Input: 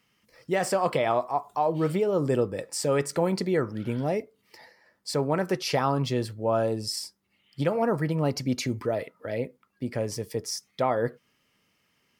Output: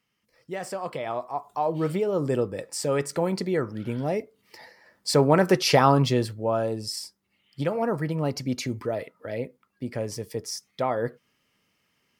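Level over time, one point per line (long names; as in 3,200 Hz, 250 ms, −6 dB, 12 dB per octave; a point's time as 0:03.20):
0:00.96 −7.5 dB
0:01.66 −0.5 dB
0:03.98 −0.5 dB
0:05.16 +7 dB
0:05.91 +7 dB
0:06.59 −1 dB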